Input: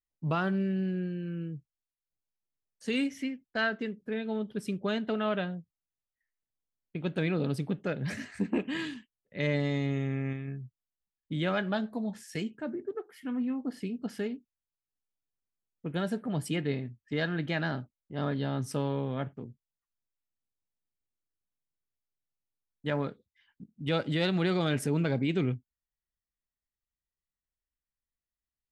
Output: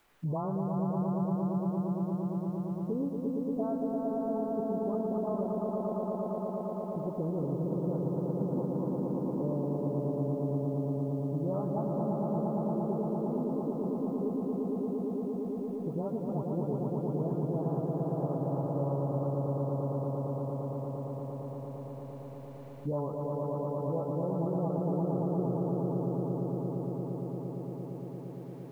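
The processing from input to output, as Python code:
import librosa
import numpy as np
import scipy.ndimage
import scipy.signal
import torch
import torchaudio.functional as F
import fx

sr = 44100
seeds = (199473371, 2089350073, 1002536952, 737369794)

p1 = fx.spec_delay(x, sr, highs='late', ms=342)
p2 = scipy.signal.sosfilt(scipy.signal.butter(12, 1100.0, 'lowpass', fs=sr, output='sos'), p1)
p3 = fx.peak_eq(p2, sr, hz=230.0, db=-5.0, octaves=1.8)
p4 = fx.rider(p3, sr, range_db=10, speed_s=2.0)
p5 = p3 + (p4 * librosa.db_to_amplitude(-0.5))
p6 = fx.quant_dither(p5, sr, seeds[0], bits=12, dither='triangular')
p7 = fx.echo_swell(p6, sr, ms=115, loudest=5, wet_db=-3.5)
p8 = fx.band_squash(p7, sr, depth_pct=70)
y = p8 * librosa.db_to_amplitude(-8.0)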